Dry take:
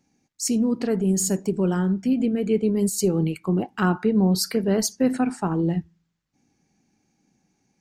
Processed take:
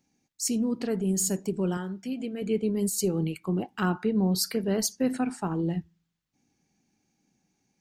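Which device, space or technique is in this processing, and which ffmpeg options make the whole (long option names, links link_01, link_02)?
presence and air boost: -filter_complex "[0:a]equalizer=frequency=3300:width_type=o:width=0.86:gain=3.5,highshelf=frequency=9400:gain=7,asettb=1/sr,asplit=3[link_01][link_02][link_03];[link_01]atrim=end=1.774[link_04];[link_02]atrim=start=1.77:end=2.42,asetpts=PTS-STARTPTS,afade=type=in:duration=0.004:curve=qsin,afade=type=out:start_time=0.646:duration=0.004:curve=qsin,lowshelf=frequency=270:gain=-11.5[link_05];[link_03]atrim=start=2.416[link_06];[link_04][link_05]acrossfade=duration=0.004:curve1=hsin:curve2=qsin[link_07];[link_07][link_06]acrossfade=duration=0.004:curve1=qsin:curve2=hsin,volume=-5.5dB"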